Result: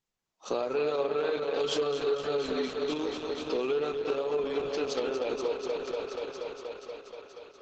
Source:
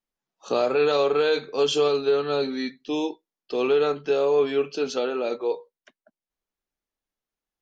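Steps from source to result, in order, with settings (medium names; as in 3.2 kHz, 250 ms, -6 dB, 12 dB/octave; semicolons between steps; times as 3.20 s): 3.90–4.67 s: dynamic bell 380 Hz, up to -4 dB, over -36 dBFS, Q 3.4; thinning echo 239 ms, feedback 80%, high-pass 170 Hz, level -7 dB; compression 3:1, threshold -28 dBFS, peak gain reduction 10.5 dB; 0.89–1.53 s: treble shelf 3.4 kHz -> 5 kHz -8 dB; Opus 10 kbps 48 kHz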